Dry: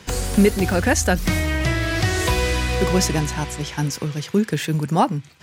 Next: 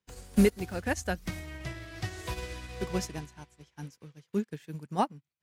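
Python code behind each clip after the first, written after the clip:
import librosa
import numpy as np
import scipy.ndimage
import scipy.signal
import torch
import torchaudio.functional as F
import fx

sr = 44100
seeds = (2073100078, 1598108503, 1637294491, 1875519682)

y = fx.upward_expand(x, sr, threshold_db=-36.0, expansion=2.5)
y = y * librosa.db_to_amplitude(-6.0)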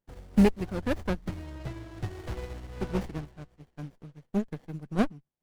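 y = scipy.ndimage.median_filter(x, 3, mode='constant')
y = fx.high_shelf(y, sr, hz=7800.0, db=-4.0)
y = fx.running_max(y, sr, window=33)
y = y * librosa.db_to_amplitude(2.0)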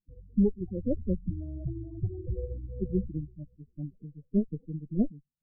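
y = fx.spec_topn(x, sr, count=8)
y = scipy.signal.sosfilt(scipy.signal.cheby2(4, 50, [1300.0, 5300.0], 'bandstop', fs=sr, output='sos'), y)
y = fx.rider(y, sr, range_db=4, speed_s=0.5)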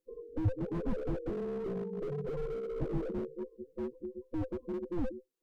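y = fx.band_invert(x, sr, width_hz=500)
y = fx.slew_limit(y, sr, full_power_hz=5.4)
y = y * librosa.db_to_amplitude(2.5)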